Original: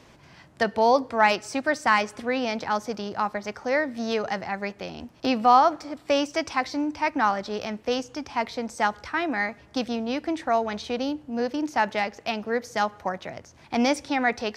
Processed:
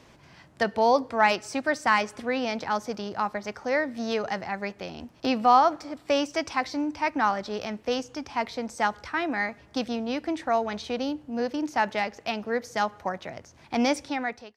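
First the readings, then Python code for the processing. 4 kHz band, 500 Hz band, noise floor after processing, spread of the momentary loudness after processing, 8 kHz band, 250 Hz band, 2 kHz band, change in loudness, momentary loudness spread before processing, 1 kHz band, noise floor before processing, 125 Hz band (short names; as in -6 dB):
-1.5 dB, -1.5 dB, -55 dBFS, 10 LU, -1.5 dB, -1.5 dB, -2.0 dB, -1.5 dB, 10 LU, -1.5 dB, -53 dBFS, -1.5 dB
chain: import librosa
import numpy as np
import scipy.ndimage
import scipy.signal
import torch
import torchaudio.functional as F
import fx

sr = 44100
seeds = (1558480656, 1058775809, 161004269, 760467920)

y = fx.fade_out_tail(x, sr, length_s=0.59)
y = y * 10.0 ** (-1.5 / 20.0)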